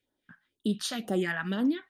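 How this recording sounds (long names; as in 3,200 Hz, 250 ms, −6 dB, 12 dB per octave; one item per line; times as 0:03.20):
phaser sweep stages 2, 2 Hz, lowest notch 320–2,200 Hz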